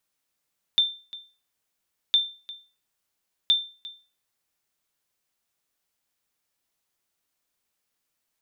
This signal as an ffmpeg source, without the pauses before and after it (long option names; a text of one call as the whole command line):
ffmpeg -f lavfi -i "aevalsrc='0.237*(sin(2*PI*3570*mod(t,1.36))*exp(-6.91*mod(t,1.36)/0.35)+0.112*sin(2*PI*3570*max(mod(t,1.36)-0.35,0))*exp(-6.91*max(mod(t,1.36)-0.35,0)/0.35))':duration=4.08:sample_rate=44100" out.wav